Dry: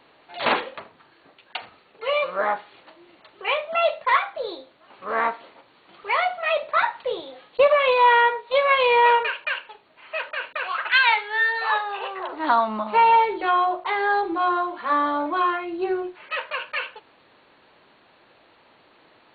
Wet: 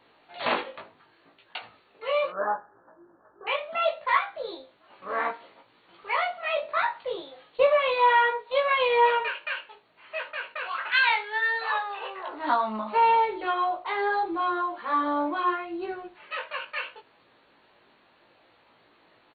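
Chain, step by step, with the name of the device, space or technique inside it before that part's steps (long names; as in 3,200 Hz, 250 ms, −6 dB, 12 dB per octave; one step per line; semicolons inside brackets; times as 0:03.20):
0:02.30–0:03.47: Chebyshev low-pass filter 1,700 Hz, order 8
double-tracked vocal (double-tracking delay 17 ms −13 dB; chorus effect 0.69 Hz, delay 17.5 ms, depth 3.1 ms)
level −2 dB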